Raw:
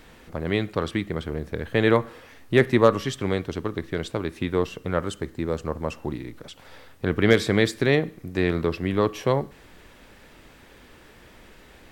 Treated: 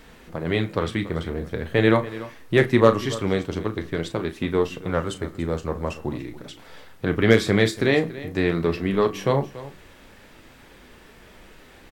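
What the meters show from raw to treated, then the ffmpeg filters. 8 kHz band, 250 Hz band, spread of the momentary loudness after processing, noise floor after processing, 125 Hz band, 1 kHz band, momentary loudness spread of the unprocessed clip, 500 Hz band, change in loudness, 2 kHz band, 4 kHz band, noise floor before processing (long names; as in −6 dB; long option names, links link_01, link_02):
+1.0 dB, +1.5 dB, 15 LU, −49 dBFS, +1.5 dB, +1.5 dB, 13 LU, +1.5 dB, +1.5 dB, +1.5 dB, +1.0 dB, −51 dBFS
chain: -filter_complex "[0:a]flanger=delay=4.5:depth=6.4:regen=-55:speed=0.45:shape=sinusoidal,asplit=2[link_01][link_02];[link_02]adelay=36,volume=-11dB[link_03];[link_01][link_03]amix=inputs=2:normalize=0,aecho=1:1:285:0.15,volume=5dB"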